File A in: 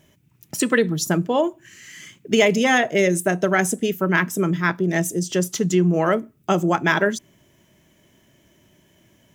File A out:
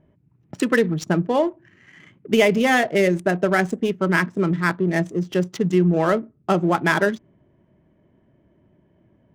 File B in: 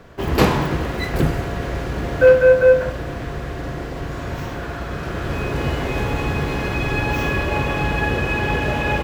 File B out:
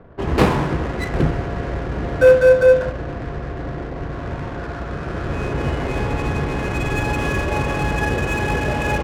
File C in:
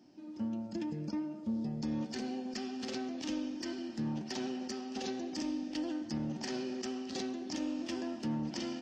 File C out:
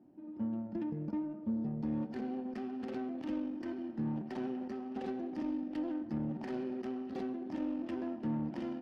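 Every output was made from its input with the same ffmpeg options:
-af "aemphasis=mode=reproduction:type=cd,adynamicsmooth=sensitivity=5.5:basefreq=1100"

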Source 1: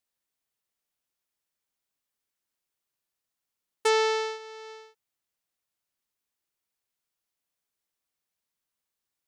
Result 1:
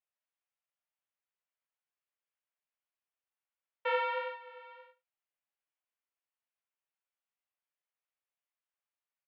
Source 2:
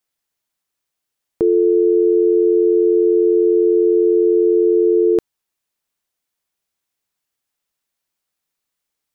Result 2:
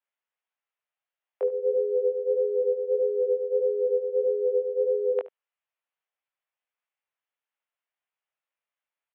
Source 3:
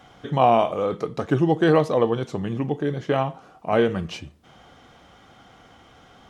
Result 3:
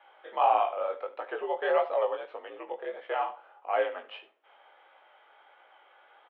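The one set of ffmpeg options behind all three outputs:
-af "flanger=delay=17:depth=4.9:speed=1.6,highpass=f=440:t=q:w=0.5412,highpass=f=440:t=q:w=1.307,lowpass=f=3000:t=q:w=0.5176,lowpass=f=3000:t=q:w=0.7071,lowpass=f=3000:t=q:w=1.932,afreqshift=65,aecho=1:1:73:0.141,volume=0.708"

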